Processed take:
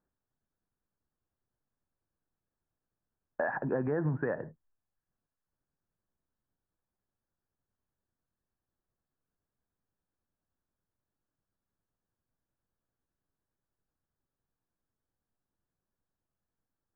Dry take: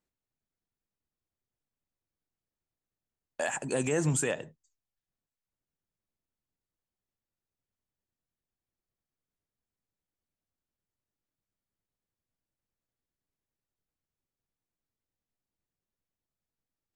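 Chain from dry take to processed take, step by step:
Chebyshev low-pass filter 1,700 Hz, order 5
downward compressor 5 to 1, threshold −32 dBFS, peak gain reduction 8 dB
level +4.5 dB

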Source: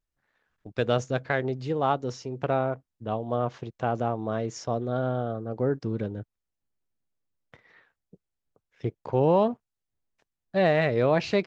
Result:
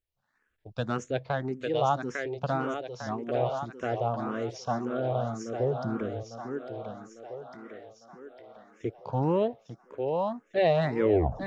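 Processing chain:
turntable brake at the end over 0.48 s
feedback echo with a high-pass in the loop 851 ms, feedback 58%, high-pass 250 Hz, level −4.5 dB
frequency shifter mixed with the dry sound +1.8 Hz

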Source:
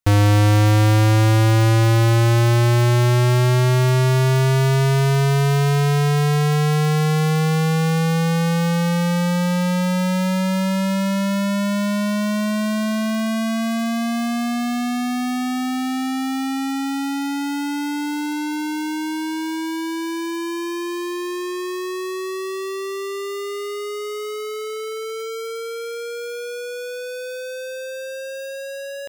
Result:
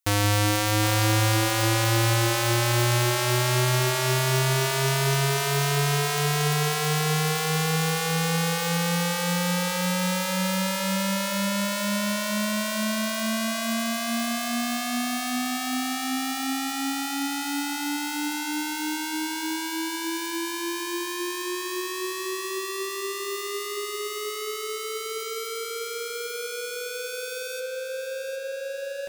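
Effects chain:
spectral tilt +2.5 dB per octave, from 0:27.59 −1.5 dB per octave
echo with a time of its own for lows and highs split 440 Hz, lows 175 ms, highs 763 ms, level −8 dB
level −3.5 dB

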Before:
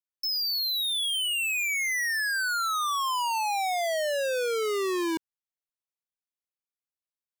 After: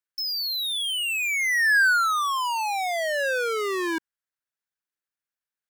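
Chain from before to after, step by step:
parametric band 1,600 Hz +10.5 dB 0.62 octaves
tempo change 1.3×

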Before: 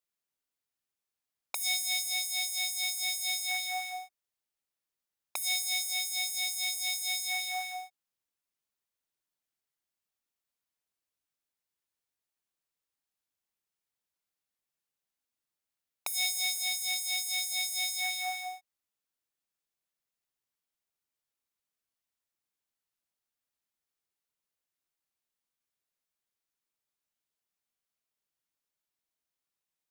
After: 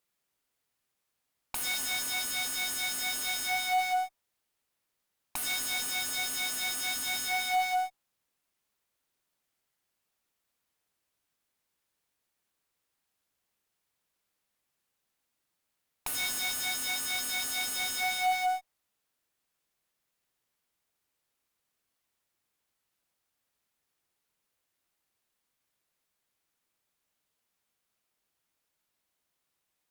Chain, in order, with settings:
tube saturation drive 38 dB, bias 0.4
dynamic equaliser 850 Hz, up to +6 dB, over −59 dBFS, Q 1.5
in parallel at −11.5 dB: sample-rate reduction 8,400 Hz, jitter 0%
on the sum: level +8.5 dB

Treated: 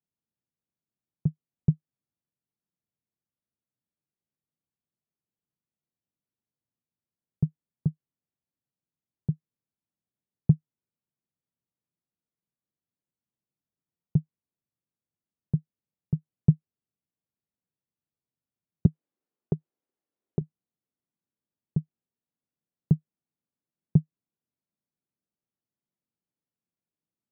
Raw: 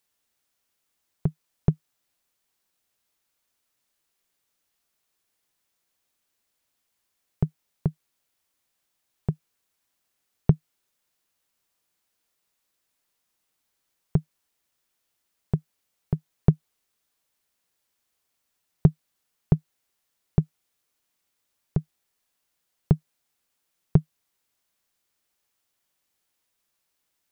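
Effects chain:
resonant band-pass 150 Hz, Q 1.4, from 0:18.86 330 Hz, from 0:20.41 180 Hz

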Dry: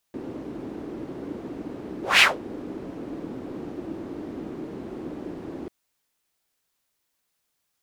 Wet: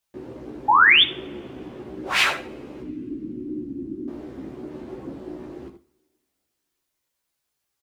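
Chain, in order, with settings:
0:02.82–0:04.08: drawn EQ curve 150 Hz 0 dB, 300 Hz +10 dB, 650 Hz −26 dB, 11,000 Hz −9 dB
single-tap delay 76 ms −10.5 dB
0:00.68–0:01.03: sound drawn into the spectrogram rise 800–3,700 Hz −11 dBFS
coupled-rooms reverb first 0.44 s, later 2.5 s, from −26 dB, DRR 9.5 dB
multi-voice chorus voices 4, 0.76 Hz, delay 15 ms, depth 1.7 ms

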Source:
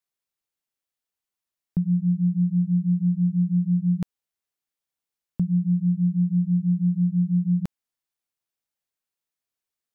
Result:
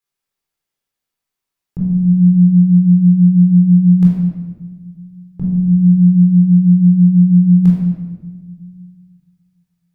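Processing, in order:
rectangular room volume 1,200 cubic metres, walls mixed, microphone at 4 metres

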